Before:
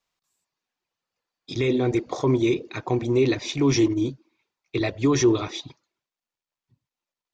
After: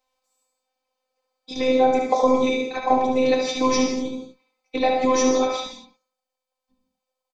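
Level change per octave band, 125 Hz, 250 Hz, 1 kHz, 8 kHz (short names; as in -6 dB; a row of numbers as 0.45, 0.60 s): -17.0 dB, -1.0 dB, +13.0 dB, n/a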